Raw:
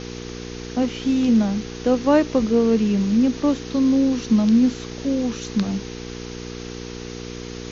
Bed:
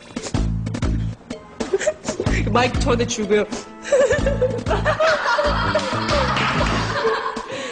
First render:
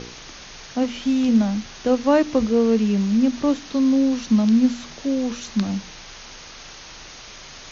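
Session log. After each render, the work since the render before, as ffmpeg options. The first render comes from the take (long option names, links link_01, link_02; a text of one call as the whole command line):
ffmpeg -i in.wav -af "bandreject=frequency=60:width_type=h:width=4,bandreject=frequency=120:width_type=h:width=4,bandreject=frequency=180:width_type=h:width=4,bandreject=frequency=240:width_type=h:width=4,bandreject=frequency=300:width_type=h:width=4,bandreject=frequency=360:width_type=h:width=4,bandreject=frequency=420:width_type=h:width=4,bandreject=frequency=480:width_type=h:width=4" out.wav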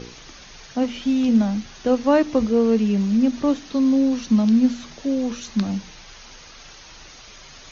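ffmpeg -i in.wav -af "afftdn=noise_reduction=6:noise_floor=-41" out.wav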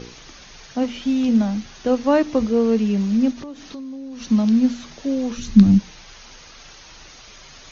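ffmpeg -i in.wav -filter_complex "[0:a]asplit=3[link_01][link_02][link_03];[link_01]afade=type=out:start_time=3.32:duration=0.02[link_04];[link_02]acompressor=threshold=-30dB:ratio=20:attack=3.2:release=140:knee=1:detection=peak,afade=type=in:start_time=3.32:duration=0.02,afade=type=out:start_time=4.2:duration=0.02[link_05];[link_03]afade=type=in:start_time=4.2:duration=0.02[link_06];[link_04][link_05][link_06]amix=inputs=3:normalize=0,asplit=3[link_07][link_08][link_09];[link_07]afade=type=out:start_time=5.37:duration=0.02[link_10];[link_08]asubboost=boost=9:cutoff=230,afade=type=in:start_time=5.37:duration=0.02,afade=type=out:start_time=5.78:duration=0.02[link_11];[link_09]afade=type=in:start_time=5.78:duration=0.02[link_12];[link_10][link_11][link_12]amix=inputs=3:normalize=0" out.wav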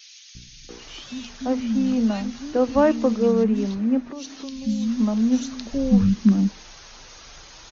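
ffmpeg -i in.wav -filter_complex "[0:a]acrossover=split=200|2400[link_01][link_02][link_03];[link_01]adelay=350[link_04];[link_02]adelay=690[link_05];[link_04][link_05][link_03]amix=inputs=3:normalize=0" out.wav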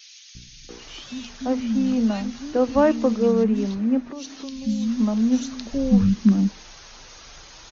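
ffmpeg -i in.wav -af anull out.wav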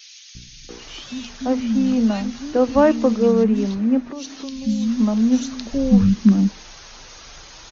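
ffmpeg -i in.wav -af "volume=3dB" out.wav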